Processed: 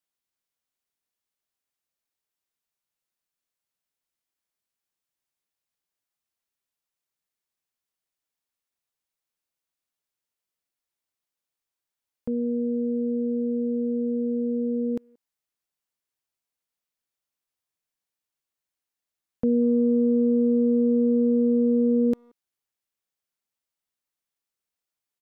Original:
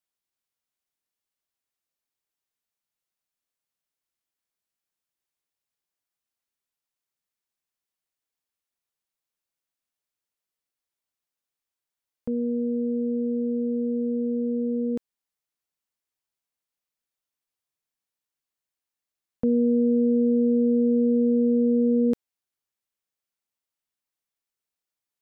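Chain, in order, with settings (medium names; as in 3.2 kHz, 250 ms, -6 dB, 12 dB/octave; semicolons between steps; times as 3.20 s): speakerphone echo 180 ms, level -27 dB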